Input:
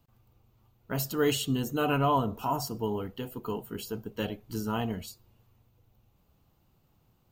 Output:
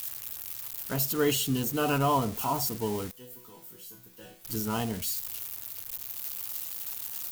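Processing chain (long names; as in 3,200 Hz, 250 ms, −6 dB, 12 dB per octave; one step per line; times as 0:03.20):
spike at every zero crossing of −27 dBFS
0:03.11–0:04.45: resonators tuned to a chord B2 sus4, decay 0.37 s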